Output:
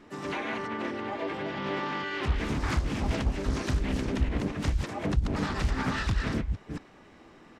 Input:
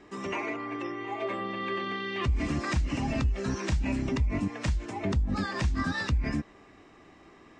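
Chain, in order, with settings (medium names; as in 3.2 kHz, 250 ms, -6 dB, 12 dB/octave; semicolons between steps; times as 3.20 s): chunks repeated in reverse 226 ms, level -4 dB; treble shelf 7.6 kHz +2.5 dB; in parallel at -8 dB: saturation -24.5 dBFS, distortion -13 dB; on the sum: harmony voices -5 st -3 dB, -4 st -17 dB, +7 st -9 dB; loudspeaker Doppler distortion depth 0.97 ms; trim -5.5 dB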